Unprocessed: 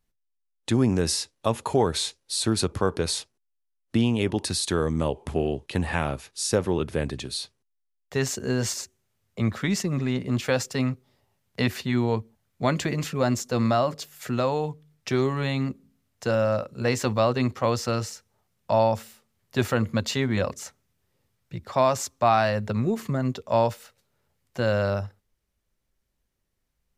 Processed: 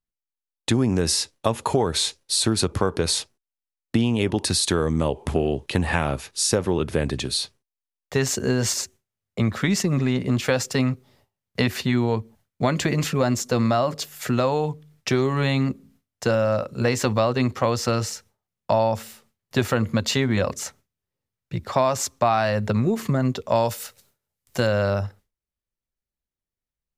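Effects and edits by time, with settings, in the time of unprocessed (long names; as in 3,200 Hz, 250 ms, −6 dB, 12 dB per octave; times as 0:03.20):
0:23.55–0:24.67: high-shelf EQ 4,800 Hz +11 dB
whole clip: noise gate with hold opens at −56 dBFS; downward compressor 3 to 1, threshold −25 dBFS; level +7 dB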